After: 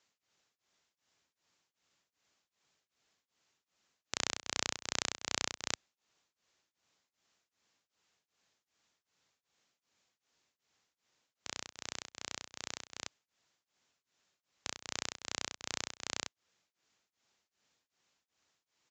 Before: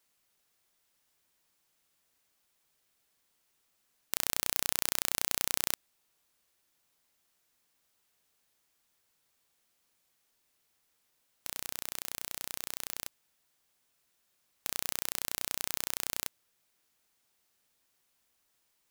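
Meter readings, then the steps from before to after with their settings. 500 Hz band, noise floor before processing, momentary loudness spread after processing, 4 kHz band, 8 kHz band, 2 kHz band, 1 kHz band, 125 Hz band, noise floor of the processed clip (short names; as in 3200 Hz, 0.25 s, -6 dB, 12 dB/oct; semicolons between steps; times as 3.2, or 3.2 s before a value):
-1.0 dB, -76 dBFS, 9 LU, -1.0 dB, -5.0 dB, -1.0 dB, -1.0 dB, -1.5 dB, under -85 dBFS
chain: HPF 70 Hz 12 dB/oct; downsampling 16000 Hz; beating tremolo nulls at 2.6 Hz; gain +2 dB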